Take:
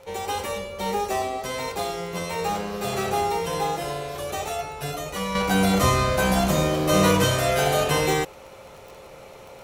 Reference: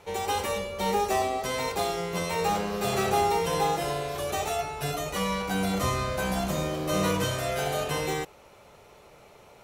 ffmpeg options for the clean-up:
-af "adeclick=t=4,bandreject=f=530:w=30,asetnsamples=n=441:p=0,asendcmd='5.35 volume volume -7.5dB',volume=0dB"

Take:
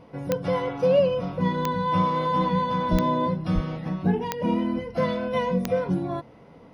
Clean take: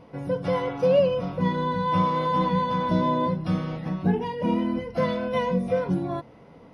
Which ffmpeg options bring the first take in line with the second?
-filter_complex "[0:a]adeclick=t=4,asplit=3[a][b][c];[a]afade=t=out:st=2.91:d=0.02[d];[b]highpass=f=140:w=0.5412,highpass=f=140:w=1.3066,afade=t=in:st=2.91:d=0.02,afade=t=out:st=3.03:d=0.02[e];[c]afade=t=in:st=3.03:d=0.02[f];[d][e][f]amix=inputs=3:normalize=0,asplit=3[g][h][i];[g]afade=t=out:st=3.54:d=0.02[j];[h]highpass=f=140:w=0.5412,highpass=f=140:w=1.3066,afade=t=in:st=3.54:d=0.02,afade=t=out:st=3.66:d=0.02[k];[i]afade=t=in:st=3.66:d=0.02[l];[j][k][l]amix=inputs=3:normalize=0"

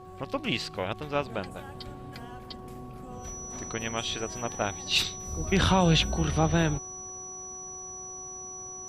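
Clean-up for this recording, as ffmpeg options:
-af "adeclick=t=4,bandreject=f=371.5:t=h:w=4,bandreject=f=743:t=h:w=4,bandreject=f=1.1145k:t=h:w=4,bandreject=f=5.9k:w=30"

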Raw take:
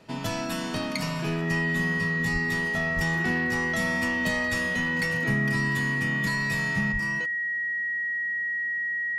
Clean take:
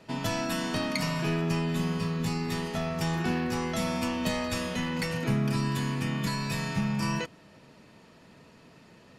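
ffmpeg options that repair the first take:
-filter_complex "[0:a]bandreject=f=1.9k:w=30,asplit=3[a][b][c];[a]afade=t=out:st=2.32:d=0.02[d];[b]highpass=f=140:w=0.5412,highpass=f=140:w=1.3066,afade=t=in:st=2.32:d=0.02,afade=t=out:st=2.44:d=0.02[e];[c]afade=t=in:st=2.44:d=0.02[f];[d][e][f]amix=inputs=3:normalize=0,asplit=3[g][h][i];[g]afade=t=out:st=2.95:d=0.02[j];[h]highpass=f=140:w=0.5412,highpass=f=140:w=1.3066,afade=t=in:st=2.95:d=0.02,afade=t=out:st=3.07:d=0.02[k];[i]afade=t=in:st=3.07:d=0.02[l];[j][k][l]amix=inputs=3:normalize=0,asplit=3[m][n][o];[m]afade=t=out:st=6.92:d=0.02[p];[n]highpass=f=140:w=0.5412,highpass=f=140:w=1.3066,afade=t=in:st=6.92:d=0.02,afade=t=out:st=7.04:d=0.02[q];[o]afade=t=in:st=7.04:d=0.02[r];[p][q][r]amix=inputs=3:normalize=0,asetnsamples=n=441:p=0,asendcmd='6.92 volume volume 6.5dB',volume=0dB"

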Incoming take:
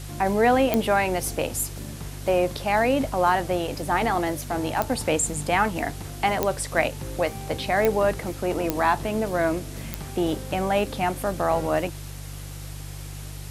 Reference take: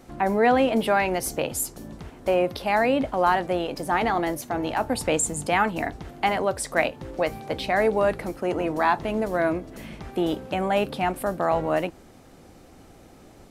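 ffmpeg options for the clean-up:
-af "adeclick=t=4,bandreject=f=49.2:t=h:w=4,bandreject=f=98.4:t=h:w=4,bandreject=f=147.6:t=h:w=4,afwtdn=0.0071"

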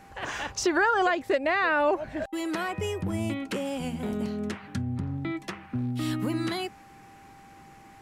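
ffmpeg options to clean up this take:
-af "bandreject=f=790:w=30"

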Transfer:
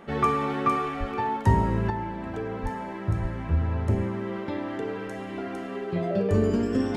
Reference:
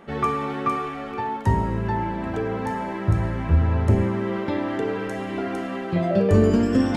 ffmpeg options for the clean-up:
-filter_complex "[0:a]bandreject=f=410:w=30,asplit=3[a][b][c];[a]afade=t=out:st=0.99:d=0.02[d];[b]highpass=f=140:w=0.5412,highpass=f=140:w=1.3066,afade=t=in:st=0.99:d=0.02,afade=t=out:st=1.11:d=0.02[e];[c]afade=t=in:st=1.11:d=0.02[f];[d][e][f]amix=inputs=3:normalize=0,asplit=3[g][h][i];[g]afade=t=out:st=2.62:d=0.02[j];[h]highpass=f=140:w=0.5412,highpass=f=140:w=1.3066,afade=t=in:st=2.62:d=0.02,afade=t=out:st=2.74:d=0.02[k];[i]afade=t=in:st=2.74:d=0.02[l];[j][k][l]amix=inputs=3:normalize=0,asplit=3[m][n][o];[m]afade=t=out:st=3.21:d=0.02[p];[n]highpass=f=140:w=0.5412,highpass=f=140:w=1.3066,afade=t=in:st=3.21:d=0.02,afade=t=out:st=3.33:d=0.02[q];[o]afade=t=in:st=3.33:d=0.02[r];[p][q][r]amix=inputs=3:normalize=0,asetnsamples=n=441:p=0,asendcmd='1.9 volume volume 6dB',volume=0dB"

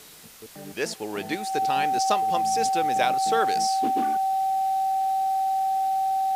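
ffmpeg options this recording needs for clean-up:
-af "bandreject=f=770:w=30,afwtdn=0.0045"

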